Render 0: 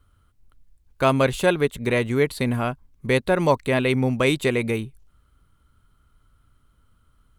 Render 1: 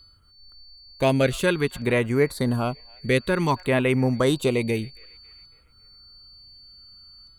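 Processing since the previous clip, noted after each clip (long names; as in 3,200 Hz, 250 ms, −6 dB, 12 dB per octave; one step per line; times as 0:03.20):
steady tone 4,500 Hz −46 dBFS
delay with a band-pass on its return 276 ms, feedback 48%, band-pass 1,400 Hz, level −23.5 dB
auto-filter notch saw down 0.55 Hz 440–6,100 Hz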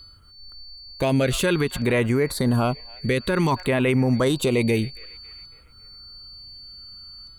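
brickwall limiter −18 dBFS, peak gain reduction 10 dB
level +6.5 dB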